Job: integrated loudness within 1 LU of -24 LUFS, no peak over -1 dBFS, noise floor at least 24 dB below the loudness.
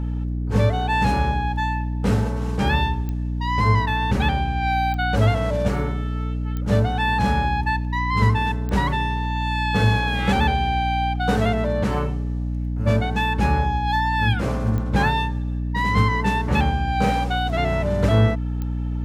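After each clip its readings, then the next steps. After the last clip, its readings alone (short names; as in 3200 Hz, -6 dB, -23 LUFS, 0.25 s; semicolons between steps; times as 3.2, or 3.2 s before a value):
clicks 6; hum 60 Hz; harmonics up to 300 Hz; hum level -22 dBFS; loudness -22.0 LUFS; peak -6.5 dBFS; loudness target -24.0 LUFS
-> de-click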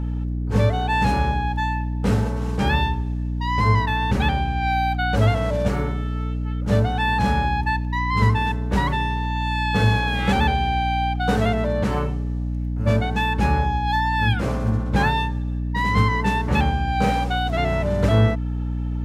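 clicks 0; hum 60 Hz; harmonics up to 300 Hz; hum level -22 dBFS
-> de-hum 60 Hz, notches 5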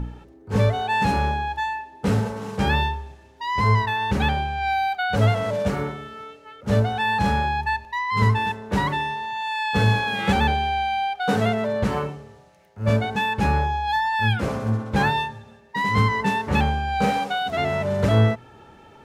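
hum none; loudness -23.0 LUFS; peak -7.5 dBFS; loudness target -24.0 LUFS
-> gain -1 dB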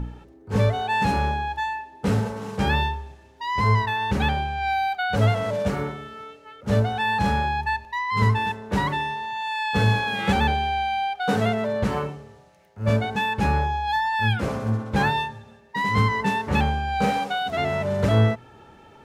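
loudness -24.0 LUFS; peak -8.5 dBFS; noise floor -50 dBFS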